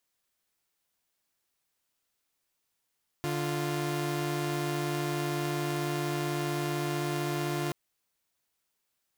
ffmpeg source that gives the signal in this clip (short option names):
-f lavfi -i "aevalsrc='0.0335*((2*mod(146.83*t,1)-1)+(2*mod(349.23*t,1)-1))':d=4.48:s=44100"